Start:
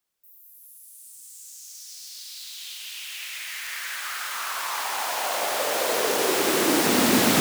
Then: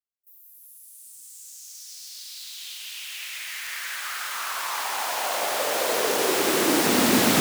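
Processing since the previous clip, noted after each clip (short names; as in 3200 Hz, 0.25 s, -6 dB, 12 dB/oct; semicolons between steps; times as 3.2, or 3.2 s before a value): gate with hold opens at -42 dBFS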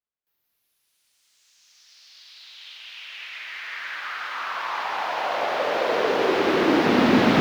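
air absorption 290 m; gain +4 dB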